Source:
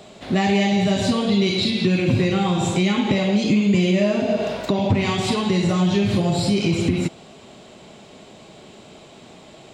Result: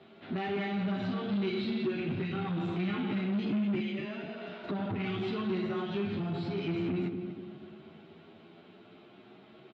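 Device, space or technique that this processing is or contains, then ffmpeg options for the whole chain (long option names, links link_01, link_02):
barber-pole flanger into a guitar amplifier: -filter_complex "[0:a]asettb=1/sr,asplit=3[link_01][link_02][link_03];[link_01]atrim=end=3.794[link_04];[link_02]atrim=start=3.79:end=4.63,asetpts=PTS-STARTPTS,afade=type=in:duration=0.004:curve=qsin,afade=type=out:start_time=0.836:duration=0.004:curve=qsin,highpass=frequency=1100:poles=1[link_05];[link_03]atrim=start=4.626[link_06];[link_04][link_05]acrossfade=duration=0.004:curve1=hsin:curve2=qsin[link_07];[link_07][link_06]acrossfade=duration=0.004:curve1=qsin:curve2=hsin,asplit=2[link_08][link_09];[link_09]adelay=244,lowpass=frequency=1300:poles=1,volume=-9dB,asplit=2[link_10][link_11];[link_11]adelay=244,lowpass=frequency=1300:poles=1,volume=0.53,asplit=2[link_12][link_13];[link_13]adelay=244,lowpass=frequency=1300:poles=1,volume=0.53,asplit=2[link_14][link_15];[link_15]adelay=244,lowpass=frequency=1300:poles=1,volume=0.53,asplit=2[link_16][link_17];[link_17]adelay=244,lowpass=frequency=1300:poles=1,volume=0.53,asplit=2[link_18][link_19];[link_19]adelay=244,lowpass=frequency=1300:poles=1,volume=0.53[link_20];[link_08][link_10][link_12][link_14][link_16][link_18][link_20]amix=inputs=7:normalize=0,asplit=2[link_21][link_22];[link_22]adelay=10.3,afreqshift=0.5[link_23];[link_21][link_23]amix=inputs=2:normalize=1,asoftclip=type=tanh:threshold=-21dB,highpass=100,equalizer=frequency=210:width_type=q:width=4:gain=3,equalizer=frequency=360:width_type=q:width=4:gain=6,equalizer=frequency=540:width_type=q:width=4:gain=-7,equalizer=frequency=970:width_type=q:width=4:gain=-3,equalizer=frequency=1400:width_type=q:width=4:gain=7,lowpass=frequency=3500:width=0.5412,lowpass=frequency=3500:width=1.3066,volume=-8.5dB"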